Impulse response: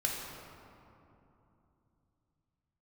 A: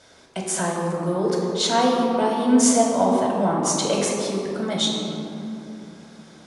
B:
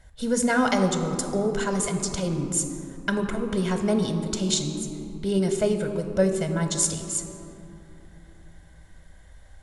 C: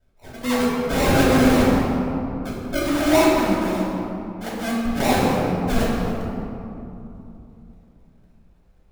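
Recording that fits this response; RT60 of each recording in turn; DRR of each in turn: A; 3.0, 3.0, 3.0 s; -2.5, 5.5, -7.5 dB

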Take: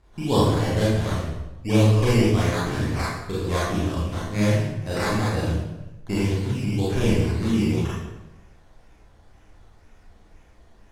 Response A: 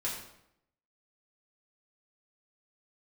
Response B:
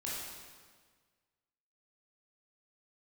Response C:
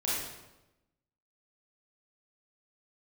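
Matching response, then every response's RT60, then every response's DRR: C; 0.75, 1.6, 1.0 s; -6.0, -7.0, -8.0 dB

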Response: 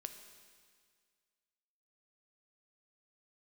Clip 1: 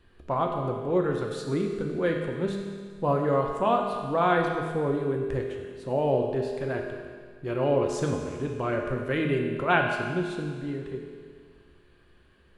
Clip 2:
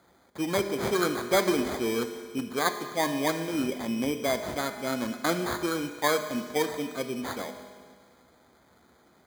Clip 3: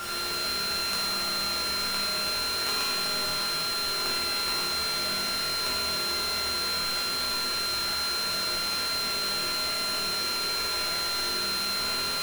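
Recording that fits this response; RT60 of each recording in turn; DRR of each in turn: 2; 1.9, 1.9, 1.9 s; 0.5, 7.0, -8.5 dB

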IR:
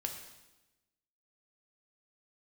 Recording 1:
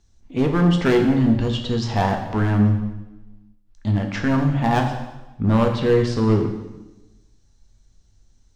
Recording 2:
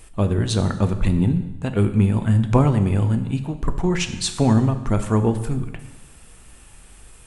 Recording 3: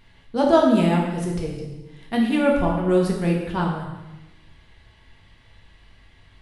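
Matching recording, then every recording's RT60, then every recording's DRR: 1; 1.0, 1.0, 1.0 s; 2.5, 8.0, -2.0 dB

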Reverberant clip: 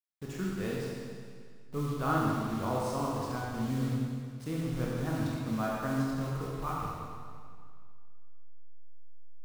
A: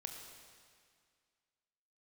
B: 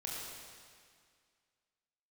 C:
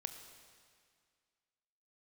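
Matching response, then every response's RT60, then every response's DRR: B; 2.0, 2.0, 2.0 s; 2.5, -5.0, 7.0 dB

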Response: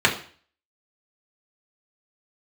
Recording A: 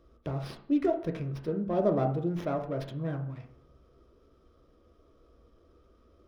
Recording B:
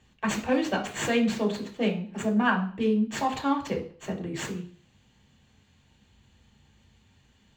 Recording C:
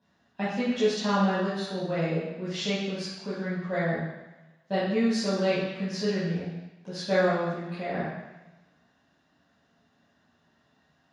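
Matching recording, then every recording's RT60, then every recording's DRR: B; 0.60, 0.45, 1.1 s; 3.0, -2.5, -12.5 dB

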